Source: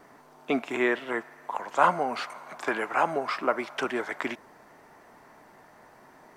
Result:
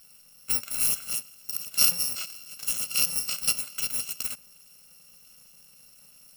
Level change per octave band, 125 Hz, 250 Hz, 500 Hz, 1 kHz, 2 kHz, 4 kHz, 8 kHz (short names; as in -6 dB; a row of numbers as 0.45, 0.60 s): -3.5, -17.5, -23.0, -21.0, -8.5, +11.5, +24.5 dB